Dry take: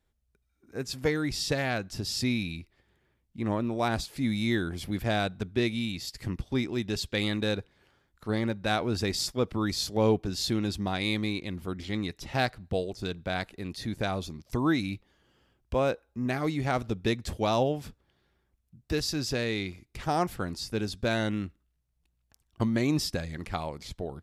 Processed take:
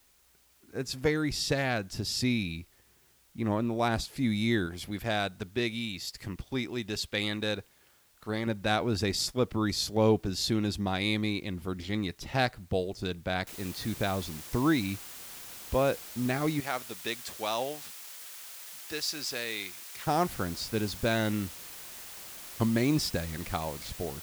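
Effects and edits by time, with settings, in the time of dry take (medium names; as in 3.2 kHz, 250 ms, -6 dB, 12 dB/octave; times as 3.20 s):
4.66–8.47 s: bass shelf 450 Hz -6 dB
13.47 s: noise floor step -65 dB -45 dB
16.60–20.07 s: high-pass 1.1 kHz 6 dB/octave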